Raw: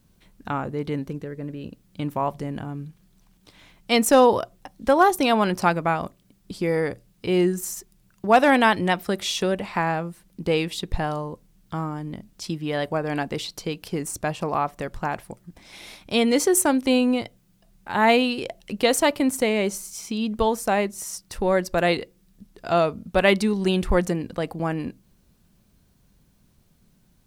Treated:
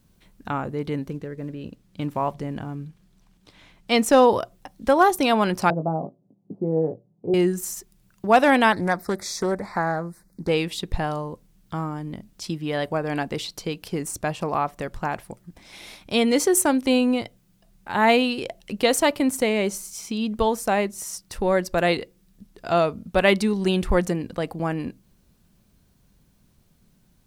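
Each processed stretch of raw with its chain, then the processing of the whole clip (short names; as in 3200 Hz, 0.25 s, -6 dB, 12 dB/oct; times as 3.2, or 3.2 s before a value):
1.1–4.27 block floating point 7-bit + high shelf 10000 Hz -10 dB
5.7–7.34 elliptic band-pass 130–750 Hz, stop band 60 dB + doubler 19 ms -6.5 dB
8.72–10.49 Chebyshev band-stop 1900–4500 Hz + Doppler distortion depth 0.23 ms
whole clip: dry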